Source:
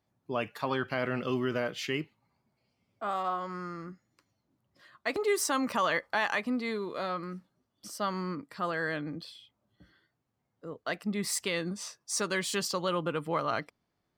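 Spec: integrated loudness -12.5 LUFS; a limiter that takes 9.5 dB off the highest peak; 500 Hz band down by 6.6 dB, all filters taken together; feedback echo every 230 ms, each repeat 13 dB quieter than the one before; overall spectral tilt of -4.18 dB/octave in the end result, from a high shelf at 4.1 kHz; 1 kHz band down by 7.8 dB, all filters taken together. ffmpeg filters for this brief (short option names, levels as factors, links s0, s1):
-af "equalizer=f=500:t=o:g=-6.5,equalizer=f=1000:t=o:g=-8,highshelf=f=4100:g=-6,alimiter=level_in=2.11:limit=0.0631:level=0:latency=1,volume=0.473,aecho=1:1:230|460|690:0.224|0.0493|0.0108,volume=25.1"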